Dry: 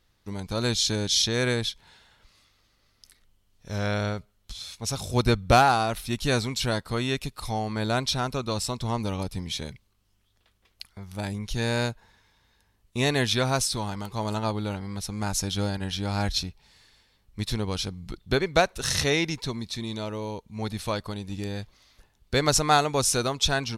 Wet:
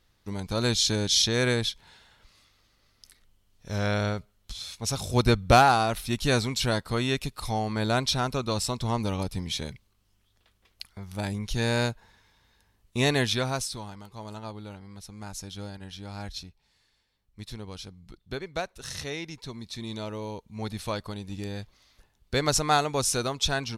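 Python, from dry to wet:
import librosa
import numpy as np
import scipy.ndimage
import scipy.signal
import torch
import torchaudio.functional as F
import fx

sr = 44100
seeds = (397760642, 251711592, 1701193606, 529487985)

y = fx.gain(x, sr, db=fx.line((13.12, 0.5), (14.03, -11.0), (19.25, -11.0), (19.92, -2.5)))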